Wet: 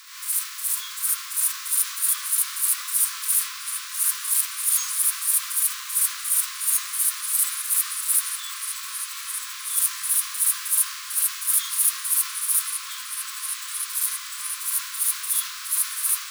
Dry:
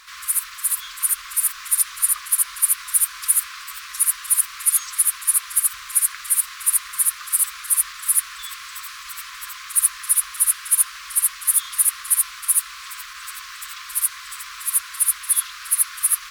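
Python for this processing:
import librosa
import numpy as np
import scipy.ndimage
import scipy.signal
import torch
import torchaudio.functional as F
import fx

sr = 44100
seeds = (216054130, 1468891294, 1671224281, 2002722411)

p1 = scipy.ndimage.median_filter(x, 3, mode='constant')
p2 = fx.band_shelf(p1, sr, hz=530.0, db=-13.5, octaves=1.3)
p3 = fx.hpss(p2, sr, part='percussive', gain_db=-15)
p4 = fx.transient(p3, sr, attack_db=-5, sustain_db=3)
p5 = fx.riaa(p4, sr, side='recording')
p6 = p5 + fx.echo_stepped(p5, sr, ms=650, hz=1200.0, octaves=1.4, feedback_pct=70, wet_db=-2, dry=0)
y = F.gain(torch.from_numpy(p6), -1.5).numpy()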